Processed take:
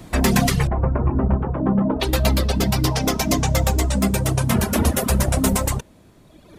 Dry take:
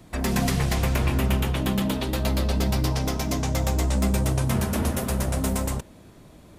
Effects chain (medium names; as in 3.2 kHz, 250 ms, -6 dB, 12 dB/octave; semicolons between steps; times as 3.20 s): gain riding 0.5 s; reverb removal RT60 1.8 s; 0.67–2.00 s: low-pass 1.2 kHz 24 dB/octave; trim +8.5 dB